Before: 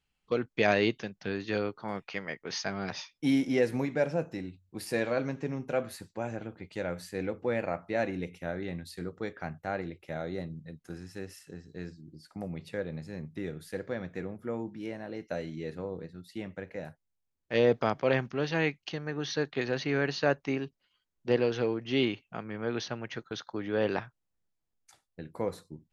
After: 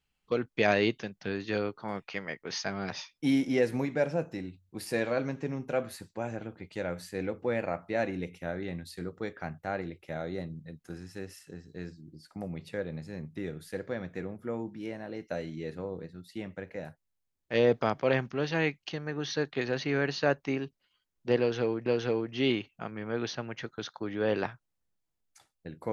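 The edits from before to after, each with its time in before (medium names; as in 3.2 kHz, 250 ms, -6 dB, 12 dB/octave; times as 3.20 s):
21.39–21.86 s: loop, 2 plays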